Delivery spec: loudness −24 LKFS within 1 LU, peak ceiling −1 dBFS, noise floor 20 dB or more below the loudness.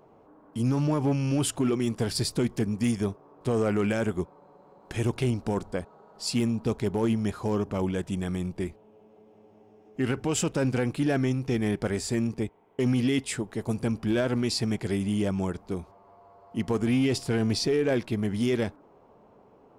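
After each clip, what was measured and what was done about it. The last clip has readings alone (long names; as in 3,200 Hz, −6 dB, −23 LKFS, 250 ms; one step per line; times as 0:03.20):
share of clipped samples 0.6%; peaks flattened at −18.5 dBFS; integrated loudness −28.0 LKFS; sample peak −18.5 dBFS; target loudness −24.0 LKFS
→ clipped peaks rebuilt −18.5 dBFS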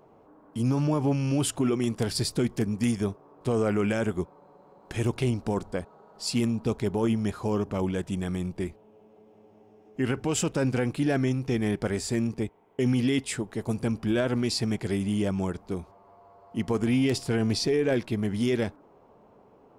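share of clipped samples 0.0%; integrated loudness −28.0 LKFS; sample peak −10.0 dBFS; target loudness −24.0 LKFS
→ level +4 dB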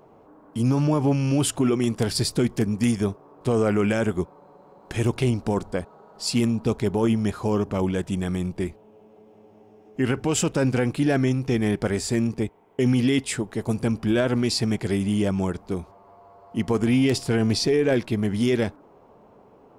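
integrated loudness −24.0 LKFS; sample peak −6.0 dBFS; background noise floor −53 dBFS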